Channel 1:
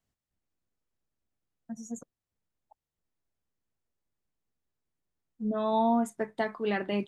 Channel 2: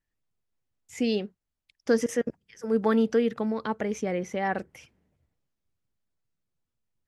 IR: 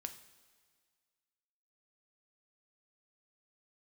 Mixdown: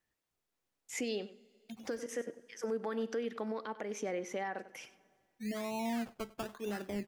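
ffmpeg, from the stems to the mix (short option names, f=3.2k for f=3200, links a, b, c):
-filter_complex "[0:a]acrossover=split=350[a][b];[b]acompressor=threshold=-32dB:ratio=2.5[c];[a][c]amix=inputs=2:normalize=0,acrusher=samples=19:mix=1:aa=0.000001:lfo=1:lforange=11.4:lforate=1,adynamicequalizer=threshold=0.00398:dfrequency=2700:dqfactor=0.7:tfrequency=2700:tqfactor=0.7:attack=5:release=100:ratio=0.375:range=3:mode=cutabove:tftype=highshelf,volume=-8.5dB,asplit=4[d][e][f][g];[e]volume=-16dB[h];[f]volume=-21dB[i];[1:a]highpass=300,acompressor=threshold=-38dB:ratio=1.5,volume=0.5dB,asplit=3[j][k][l];[k]volume=-5dB[m];[l]volume=-16dB[n];[g]apad=whole_len=311970[o];[j][o]sidechaincompress=threshold=-50dB:ratio=8:attack=16:release=1210[p];[2:a]atrim=start_sample=2205[q];[h][m]amix=inputs=2:normalize=0[r];[r][q]afir=irnorm=-1:irlink=0[s];[i][n]amix=inputs=2:normalize=0,aecho=0:1:97:1[t];[d][p][s][t]amix=inputs=4:normalize=0,alimiter=level_in=3.5dB:limit=-24dB:level=0:latency=1:release=357,volume=-3.5dB"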